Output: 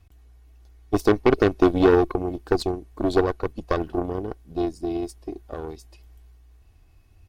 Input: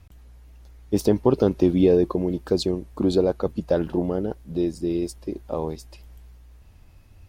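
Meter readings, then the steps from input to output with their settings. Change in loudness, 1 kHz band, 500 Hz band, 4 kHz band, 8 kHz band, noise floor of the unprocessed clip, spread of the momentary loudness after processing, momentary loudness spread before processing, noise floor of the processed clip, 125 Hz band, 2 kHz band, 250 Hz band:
0.0 dB, +7.0 dB, 0.0 dB, -1.0 dB, n/a, -50 dBFS, 17 LU, 11 LU, -55 dBFS, -2.5 dB, +11.5 dB, -1.5 dB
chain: added harmonics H 3 -20 dB, 6 -12 dB, 7 -31 dB, 8 -19 dB, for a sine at -6.5 dBFS; comb 2.7 ms, depth 44%

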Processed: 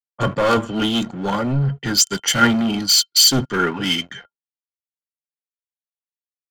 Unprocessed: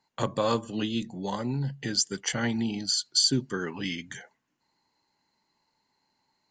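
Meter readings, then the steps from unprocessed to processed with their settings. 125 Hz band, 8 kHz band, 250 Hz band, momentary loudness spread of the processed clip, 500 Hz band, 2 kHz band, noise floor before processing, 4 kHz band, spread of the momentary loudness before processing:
+10.0 dB, +11.5 dB, +9.5 dB, 10 LU, +9.0 dB, +13.0 dB, -77 dBFS, +11.0 dB, 11 LU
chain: sample leveller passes 5; low-pass opened by the level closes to 330 Hz, open at -14.5 dBFS; small resonant body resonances 1400/3100 Hz, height 16 dB, ringing for 75 ms; three-band expander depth 100%; gain -4 dB

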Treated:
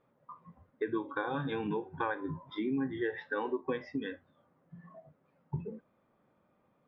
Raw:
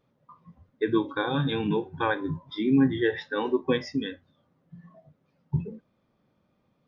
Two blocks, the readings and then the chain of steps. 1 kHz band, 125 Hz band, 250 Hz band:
-5.5 dB, -11.0 dB, -10.0 dB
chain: LPF 1800 Hz 12 dB/oct; low shelf 300 Hz -11 dB; compressor 3:1, threshold -37 dBFS, peak gain reduction 11 dB; gain +4 dB

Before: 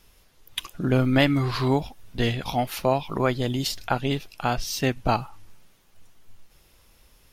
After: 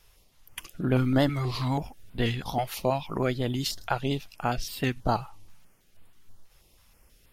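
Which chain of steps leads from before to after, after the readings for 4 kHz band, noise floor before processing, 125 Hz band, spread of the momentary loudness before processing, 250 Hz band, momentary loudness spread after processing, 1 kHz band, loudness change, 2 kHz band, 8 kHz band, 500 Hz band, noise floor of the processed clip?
-5.0 dB, -59 dBFS, -3.0 dB, 9 LU, -3.5 dB, 9 LU, -3.5 dB, -3.5 dB, -5.5 dB, -5.0 dB, -4.0 dB, -62 dBFS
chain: vibrato 10 Hz 28 cents; stepped notch 6.2 Hz 250–6000 Hz; gain -2.5 dB

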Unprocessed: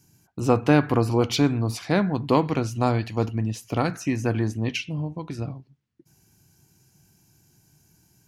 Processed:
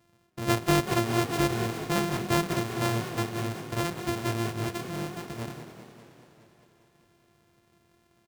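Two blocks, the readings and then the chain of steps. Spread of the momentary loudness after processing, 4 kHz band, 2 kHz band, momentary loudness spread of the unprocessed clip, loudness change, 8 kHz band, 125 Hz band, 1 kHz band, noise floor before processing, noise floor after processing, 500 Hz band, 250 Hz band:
13 LU, -1.0 dB, -1.0 dB, 13 LU, -5.0 dB, +1.5 dB, -6.0 dB, -3.0 dB, -64 dBFS, -66 dBFS, -5.5 dB, -6.0 dB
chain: sample sorter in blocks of 128 samples; frequency-shifting echo 0.188 s, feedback 61%, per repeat +41 Hz, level -13 dB; warbling echo 0.202 s, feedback 69%, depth 135 cents, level -14 dB; gain -6 dB

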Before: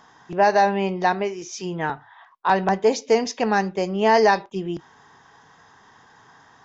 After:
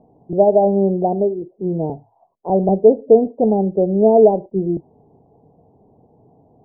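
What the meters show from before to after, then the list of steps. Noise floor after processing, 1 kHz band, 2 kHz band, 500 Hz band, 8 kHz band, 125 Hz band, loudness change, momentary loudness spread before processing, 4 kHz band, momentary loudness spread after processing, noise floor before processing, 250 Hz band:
-59 dBFS, -3.0 dB, under -40 dB, +7.5 dB, n/a, +8.0 dB, +5.0 dB, 14 LU, under -40 dB, 13 LU, -54 dBFS, +8.0 dB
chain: steep low-pass 680 Hz 48 dB/oct; gain +8 dB

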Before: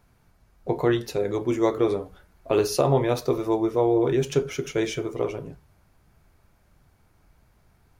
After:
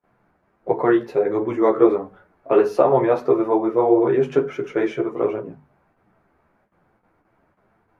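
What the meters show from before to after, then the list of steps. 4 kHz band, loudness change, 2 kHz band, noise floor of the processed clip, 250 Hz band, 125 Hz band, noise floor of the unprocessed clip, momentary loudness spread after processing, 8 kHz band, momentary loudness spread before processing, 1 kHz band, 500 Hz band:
n/a, +5.0 dB, +3.5 dB, -66 dBFS, +4.5 dB, -5.0 dB, -62 dBFS, 10 LU, under -15 dB, 10 LU, +6.5 dB, +5.5 dB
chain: gate with hold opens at -51 dBFS; three-band isolator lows -20 dB, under 160 Hz, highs -23 dB, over 2100 Hz; chorus voices 2, 1.4 Hz, delay 12 ms, depth 3 ms; notches 50/100/150/200/250 Hz; dynamic EQ 1400 Hz, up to +3 dB, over -41 dBFS, Q 0.96; gain +8.5 dB; Vorbis 64 kbps 32000 Hz

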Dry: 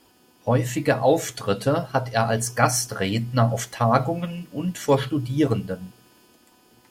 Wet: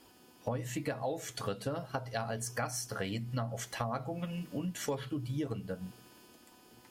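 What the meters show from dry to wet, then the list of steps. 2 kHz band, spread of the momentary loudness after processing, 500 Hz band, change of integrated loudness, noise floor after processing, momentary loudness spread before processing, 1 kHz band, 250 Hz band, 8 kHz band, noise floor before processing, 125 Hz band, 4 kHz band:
-13.0 dB, 7 LU, -15.5 dB, -14.5 dB, -60 dBFS, 9 LU, -16.0 dB, -13.5 dB, -12.5 dB, -58 dBFS, -14.0 dB, -12.0 dB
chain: compressor 6:1, threshold -31 dBFS, peak gain reduction 17.5 dB; gain -2.5 dB

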